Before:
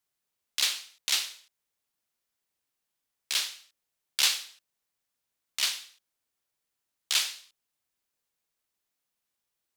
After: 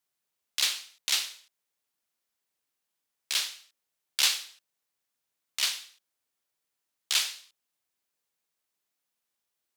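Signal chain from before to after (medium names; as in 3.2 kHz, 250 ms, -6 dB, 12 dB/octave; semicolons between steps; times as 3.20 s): bass shelf 96 Hz -9.5 dB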